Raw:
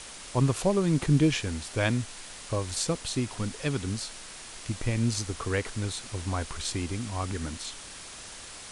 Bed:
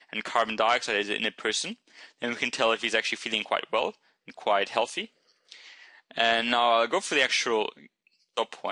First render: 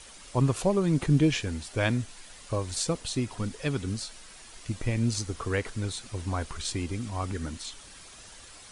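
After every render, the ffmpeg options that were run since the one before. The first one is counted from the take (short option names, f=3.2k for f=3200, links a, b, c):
-af "afftdn=nr=8:nf=-44"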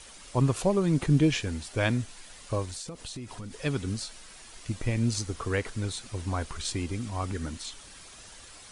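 -filter_complex "[0:a]asettb=1/sr,asplit=3[a][b][c];[a]atrim=end=2.654[d];[b]atrim=start=2.65:end=3.53,asetpts=PTS-STARTPTS,afade=t=in:d=0.004:c=qsin,afade=t=out:st=0.876:d=0.004:c=qsin,acompressor=threshold=-35dB:ratio=12:attack=3.2:release=140:knee=1:detection=peak[e];[c]atrim=start=3.526[f];[d][e]acrossfade=d=0.004:c1=hsin:c2=qsin[g];[g][f]acrossfade=d=0.004:c1=qsin:c2=hsin"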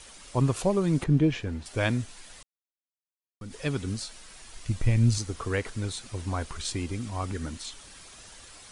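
-filter_complex "[0:a]asettb=1/sr,asplit=3[a][b][c];[a]atrim=end=1.044[d];[b]atrim=start=1.04:end=1.66,asetpts=PTS-STARTPTS,afade=t=in:d=0.004:c=qsin,afade=t=out:st=0.616:d=0.004:c=qsin,lowpass=f=1.6k:p=1[e];[c]atrim=start=1.656[f];[d][e]acrossfade=d=0.004:c1=hsin:c2=qsin[g];[g][f]acrossfade=d=0.004:c1=qsin:c2=hsin,asettb=1/sr,asplit=3[h][i][j];[h]atrim=end=4.224[k];[i]atrim=start=4.22:end=5.18,asetpts=PTS-STARTPTS,afade=t=in:d=0.004:c=qsin,afade=t=out:st=0.956:d=0.004:c=qsin,asubboost=boost=9:cutoff=170[l];[j]atrim=start=5.176[m];[k][l]acrossfade=d=0.004:c1=hsin:c2=qsin[n];[n][m]acrossfade=d=0.004:c1=qsin:c2=hsin,asplit=3[o][p][q];[o]atrim=end=2.43,asetpts=PTS-STARTPTS,afade=t=out:st=2.426:d=0.004:c=hsin[r];[p]atrim=start=2.43:end=3.41,asetpts=PTS-STARTPTS,volume=0[s];[q]atrim=start=3.41,asetpts=PTS-STARTPTS,afade=t=in:d=0.004:c=hsin[t];[r][s][t]concat=n=3:v=0:a=1"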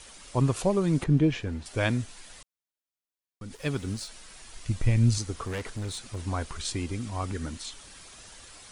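-filter_complex "[0:a]asettb=1/sr,asplit=3[a][b][c];[a]atrim=end=3.544[d];[b]atrim=start=3.54:end=4.08,asetpts=PTS-STARTPTS,afade=t=in:d=0.004:c=qsin,afade=t=out:st=0.536:d=0.004:c=qsin,aeval=exprs='sgn(val(0))*max(abs(val(0))-0.00316,0)':c=same[e];[c]atrim=start=4.076[f];[d][e]acrossfade=d=0.004:c1=hsin:c2=qsin[g];[g][f]acrossfade=d=0.004:c1=qsin:c2=hsin,asettb=1/sr,asplit=3[h][i][j];[h]atrim=end=5.434[k];[i]atrim=start=5.43:end=6.19,asetpts=PTS-STARTPTS,afade=t=in:d=0.004:c=qsin,afade=t=out:st=0.756:d=0.004:c=qsin,volume=30dB,asoftclip=hard,volume=-30dB[l];[j]atrim=start=6.186[m];[k][l]acrossfade=d=0.004:c1=hsin:c2=qsin[n];[n][m]acrossfade=d=0.004:c1=qsin:c2=hsin"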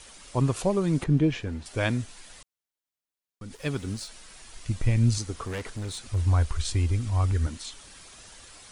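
-filter_complex "[0:a]asettb=1/sr,asplit=3[a][b][c];[a]atrim=end=6.074[d];[b]atrim=start=6.07:end=7.47,asetpts=PTS-STARTPTS,afade=t=in:d=0.004:c=qsin,afade=t=out:st=1.396:d=0.004:c=qsin,lowshelf=f=120:t=q:w=1.5:g=10.5[e];[c]atrim=start=7.466[f];[d][e]acrossfade=d=0.004:c1=hsin:c2=qsin[g];[g][f]acrossfade=d=0.004:c1=qsin:c2=hsin"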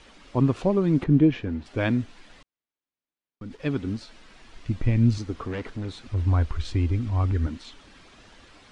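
-af "lowpass=3.4k,equalizer=f=270:w=1.5:g=7"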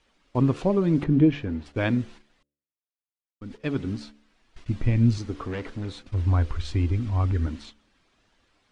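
-af "agate=range=-15dB:threshold=-42dB:ratio=16:detection=peak,bandreject=f=72.57:t=h:w=4,bandreject=f=145.14:t=h:w=4,bandreject=f=217.71:t=h:w=4,bandreject=f=290.28:t=h:w=4,bandreject=f=362.85:t=h:w=4,bandreject=f=435.42:t=h:w=4,bandreject=f=507.99:t=h:w=4,bandreject=f=580.56:t=h:w=4"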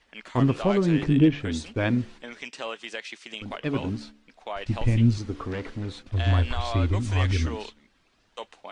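-filter_complex "[1:a]volume=-10dB[a];[0:a][a]amix=inputs=2:normalize=0"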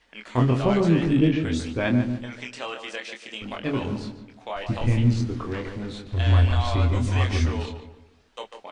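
-filter_complex "[0:a]asplit=2[a][b];[b]adelay=24,volume=-4.5dB[c];[a][c]amix=inputs=2:normalize=0,asplit=2[d][e];[e]adelay=145,lowpass=f=1.7k:p=1,volume=-7dB,asplit=2[f][g];[g]adelay=145,lowpass=f=1.7k:p=1,volume=0.39,asplit=2[h][i];[i]adelay=145,lowpass=f=1.7k:p=1,volume=0.39,asplit=2[j][k];[k]adelay=145,lowpass=f=1.7k:p=1,volume=0.39,asplit=2[l][m];[m]adelay=145,lowpass=f=1.7k:p=1,volume=0.39[n];[f][h][j][l][n]amix=inputs=5:normalize=0[o];[d][o]amix=inputs=2:normalize=0"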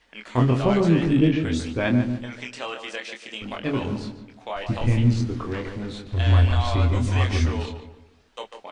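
-af "volume=1dB"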